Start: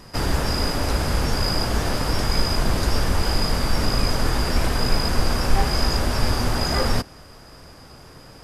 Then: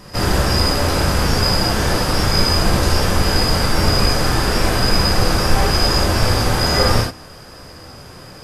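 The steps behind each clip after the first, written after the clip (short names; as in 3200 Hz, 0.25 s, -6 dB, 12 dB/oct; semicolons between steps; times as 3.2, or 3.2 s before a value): non-linear reverb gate 0.11 s flat, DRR -2.5 dB; gain +2.5 dB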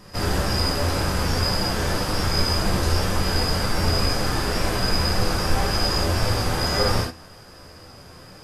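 flange 1.9 Hz, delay 9.5 ms, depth 2.8 ms, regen +66%; gain -2 dB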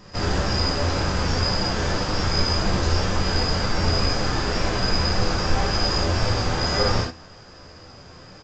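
downsampling 16000 Hz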